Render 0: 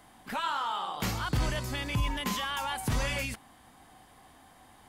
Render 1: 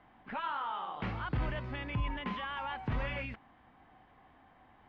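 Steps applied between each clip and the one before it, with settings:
low-pass filter 2,700 Hz 24 dB per octave
level −4.5 dB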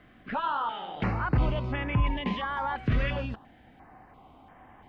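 notch on a step sequencer 2.9 Hz 890–4,200 Hz
level +9 dB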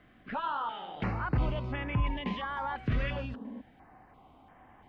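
healed spectral selection 0:03.36–0:03.58, 210–1,100 Hz before
level −4 dB

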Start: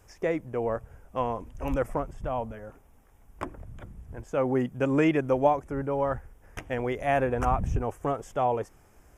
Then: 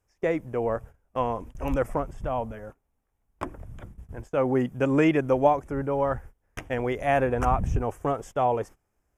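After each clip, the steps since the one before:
noise gate −43 dBFS, range −20 dB
level +2 dB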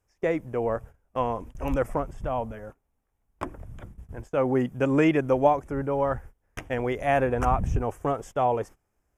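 no processing that can be heard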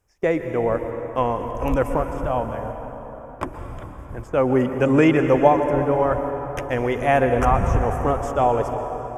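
dense smooth reverb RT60 4.4 s, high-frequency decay 0.55×, pre-delay 110 ms, DRR 6 dB
level +5 dB

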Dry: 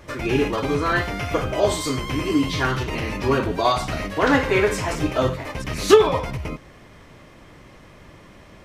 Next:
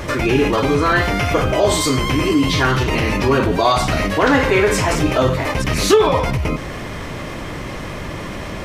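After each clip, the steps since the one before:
envelope flattener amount 50%
level −1 dB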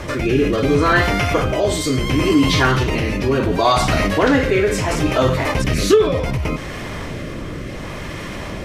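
rotating-speaker cabinet horn 0.7 Hz
level +1.5 dB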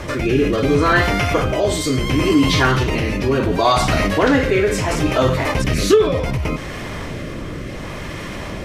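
no processing that can be heard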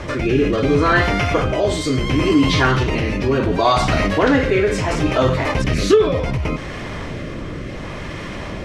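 high-frequency loss of the air 53 metres

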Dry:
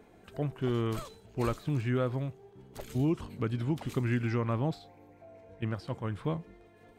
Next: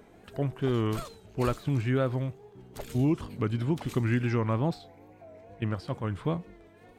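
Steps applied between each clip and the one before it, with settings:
tape wow and flutter 81 cents
level +3 dB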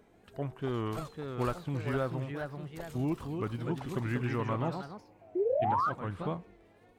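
dynamic equaliser 960 Hz, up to +6 dB, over −44 dBFS, Q 0.88
sound drawn into the spectrogram rise, 0:05.35–0:05.90, 340–1,300 Hz −22 dBFS
delay with pitch and tempo change per echo 621 ms, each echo +2 semitones, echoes 2, each echo −6 dB
level −7.5 dB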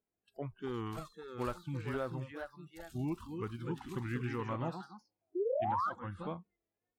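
noise reduction from a noise print of the clip's start 26 dB
level −4.5 dB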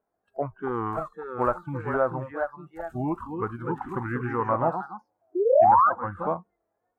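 drawn EQ curve 160 Hz 0 dB, 400 Hz +4 dB, 670 Hz +13 dB, 1,500 Hz +8 dB, 3,300 Hz −17 dB, 5,200 Hz −18 dB, 7,400 Hz −12 dB
level +5.5 dB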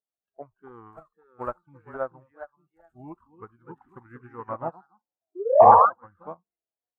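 sound drawn into the spectrogram noise, 0:05.60–0:05.86, 440–1,200 Hz −20 dBFS
expander for the loud parts 2.5 to 1, over −33 dBFS
level +5 dB

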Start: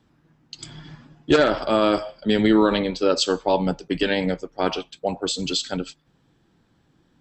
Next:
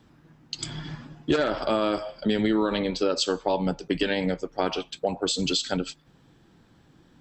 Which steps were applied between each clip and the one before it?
downward compressor 3 to 1, threshold −29 dBFS, peak gain reduction 13 dB
level +5 dB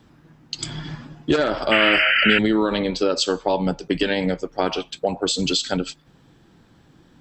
sound drawn into the spectrogram noise, 0:01.71–0:02.39, 1,300–3,100 Hz −22 dBFS
level +4 dB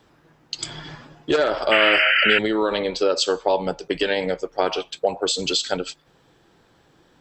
low shelf with overshoot 330 Hz −7 dB, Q 1.5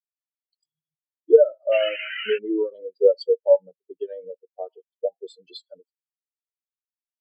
high-shelf EQ 4,100 Hz +7 dB
every bin expanded away from the loudest bin 4 to 1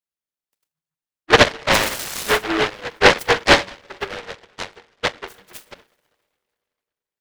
convolution reverb, pre-delay 3 ms, DRR 9 dB
short delay modulated by noise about 1,200 Hz, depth 0.39 ms
level +2.5 dB

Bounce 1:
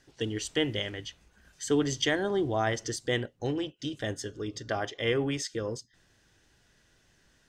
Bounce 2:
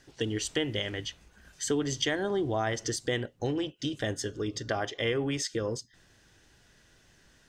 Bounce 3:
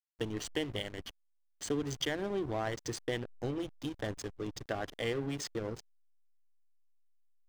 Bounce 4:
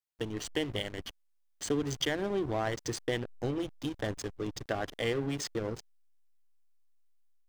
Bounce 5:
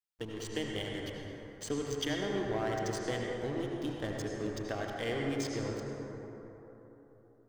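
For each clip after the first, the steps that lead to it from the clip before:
downward compressor 2.5 to 1, threshold −32 dBFS, peak gain reduction 8 dB; level +4 dB
slack as between gear wheels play −29 dBFS; level −4 dB
automatic gain control gain up to 3 dB
convolution reverb RT60 3.7 s, pre-delay 68 ms, DRR −1 dB; level −5 dB

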